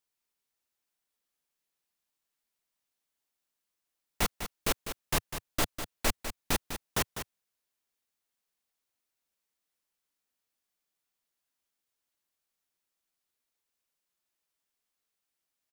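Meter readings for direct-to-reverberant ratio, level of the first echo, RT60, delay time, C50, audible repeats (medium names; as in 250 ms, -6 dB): no reverb, -9.5 dB, no reverb, 200 ms, no reverb, 1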